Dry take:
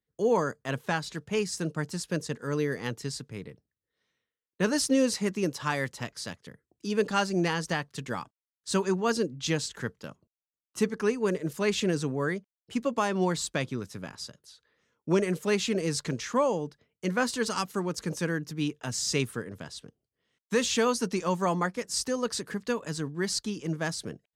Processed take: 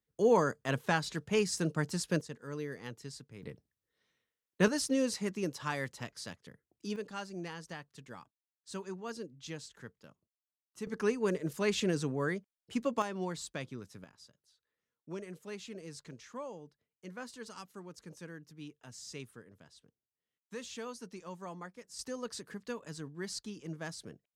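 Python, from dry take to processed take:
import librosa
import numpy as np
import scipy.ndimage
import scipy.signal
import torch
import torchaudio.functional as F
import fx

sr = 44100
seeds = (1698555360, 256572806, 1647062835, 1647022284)

y = fx.gain(x, sr, db=fx.steps((0.0, -1.0), (2.21, -11.0), (3.43, 0.0), (4.68, -6.5), (6.96, -15.0), (10.87, -4.0), (13.02, -10.5), (14.04, -17.5), (21.99, -10.5)))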